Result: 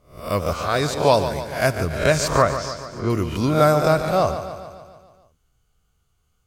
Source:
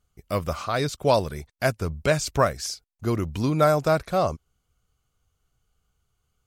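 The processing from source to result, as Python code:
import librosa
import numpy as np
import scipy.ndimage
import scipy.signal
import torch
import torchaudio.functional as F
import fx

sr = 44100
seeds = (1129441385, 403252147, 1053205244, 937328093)

y = fx.spec_swells(x, sr, rise_s=0.43)
y = fx.air_absorb(y, sr, metres=140.0, at=(2.38, 3.1))
y = fx.echo_feedback(y, sr, ms=144, feedback_pct=59, wet_db=-10.5)
y = y * 10.0 ** (2.5 / 20.0)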